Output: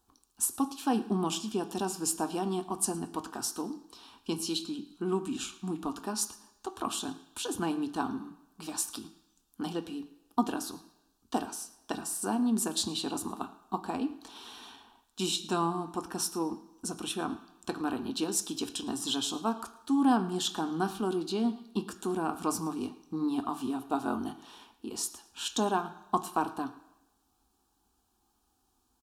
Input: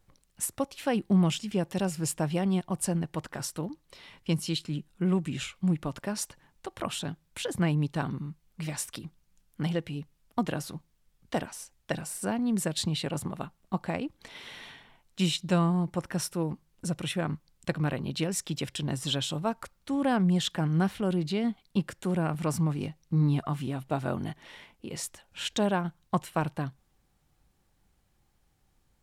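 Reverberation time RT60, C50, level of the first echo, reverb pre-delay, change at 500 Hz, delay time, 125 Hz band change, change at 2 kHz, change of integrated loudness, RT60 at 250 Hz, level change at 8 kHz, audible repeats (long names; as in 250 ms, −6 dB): 0.95 s, 13.5 dB, −21.0 dB, 3 ms, −2.5 dB, 112 ms, −13.5 dB, −5.0 dB, −2.0 dB, 0.85 s, +2.5 dB, 1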